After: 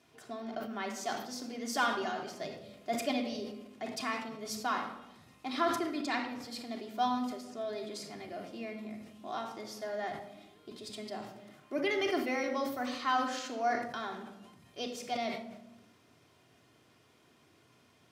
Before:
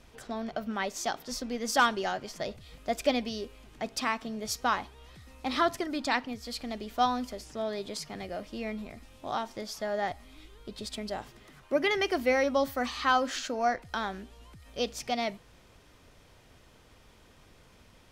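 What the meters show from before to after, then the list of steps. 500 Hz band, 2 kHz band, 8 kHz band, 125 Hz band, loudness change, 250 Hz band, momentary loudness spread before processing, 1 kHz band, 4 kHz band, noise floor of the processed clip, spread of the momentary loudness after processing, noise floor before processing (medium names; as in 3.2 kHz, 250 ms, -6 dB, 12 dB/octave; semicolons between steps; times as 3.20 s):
-5.0 dB, -5.0 dB, -5.5 dB, -6.5 dB, -4.5 dB, -2.5 dB, 14 LU, -4.0 dB, -5.0 dB, -65 dBFS, 15 LU, -58 dBFS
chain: high-pass 120 Hz 24 dB/octave; simulated room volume 3900 m³, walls furnished, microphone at 3.2 m; decay stretcher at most 71 dB/s; trim -8 dB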